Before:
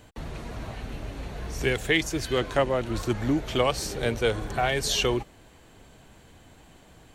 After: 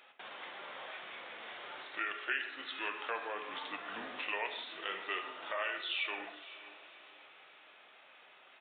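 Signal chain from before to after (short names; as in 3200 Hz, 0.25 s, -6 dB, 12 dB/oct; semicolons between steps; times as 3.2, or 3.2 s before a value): octaver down 2 oct, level +2 dB; HPF 890 Hz 12 dB/oct; tilt +2 dB/oct; compressor 2:1, threshold -38 dBFS, peak gain reduction 12 dB; flange 0.45 Hz, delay 2.8 ms, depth 5.3 ms, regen +85%; varispeed -17%; diffused feedback echo 0.547 s, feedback 43%, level -15 dB; on a send at -5 dB: reverb, pre-delay 3 ms; on the sum: spectral gate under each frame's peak -30 dB strong; downsampling 8000 Hz; gain +2 dB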